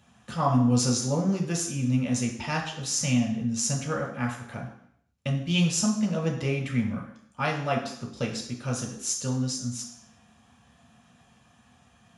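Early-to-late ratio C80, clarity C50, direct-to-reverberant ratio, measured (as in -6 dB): 9.5 dB, 6.5 dB, -1.0 dB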